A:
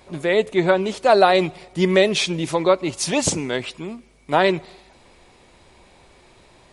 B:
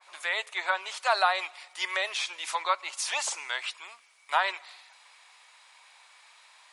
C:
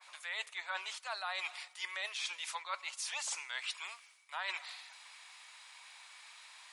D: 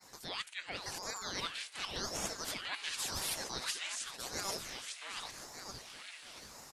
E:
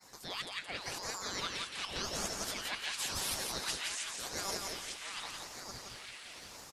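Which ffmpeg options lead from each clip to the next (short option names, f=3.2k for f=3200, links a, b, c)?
-filter_complex "[0:a]highpass=f=980:w=0.5412,highpass=f=980:w=1.3066,acrossover=split=1300[a][b];[b]alimiter=limit=-19.5dB:level=0:latency=1:release=54[c];[a][c]amix=inputs=2:normalize=0,adynamicequalizer=threshold=0.0141:dfrequency=2000:dqfactor=0.7:tfrequency=2000:tqfactor=0.7:attack=5:release=100:ratio=0.375:range=2.5:mode=cutabove:tftype=highshelf"
-af "highpass=f=1.3k:p=1,areverse,acompressor=threshold=-39dB:ratio=10,areverse,volume=2.5dB"
-af "tiltshelf=f=970:g=-8.5,aecho=1:1:690|1208|1596|1887|2105:0.631|0.398|0.251|0.158|0.1,aeval=exprs='val(0)*sin(2*PI*1700*n/s+1700*0.85/0.9*sin(2*PI*0.9*n/s))':c=same,volume=-3.5dB"
-af "aecho=1:1:171|342|513|684:0.631|0.183|0.0531|0.0154"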